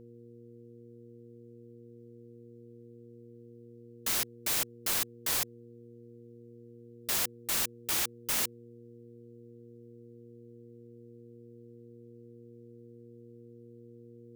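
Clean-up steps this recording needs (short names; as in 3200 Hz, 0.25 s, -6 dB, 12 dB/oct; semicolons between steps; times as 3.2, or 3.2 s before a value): de-hum 118.2 Hz, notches 4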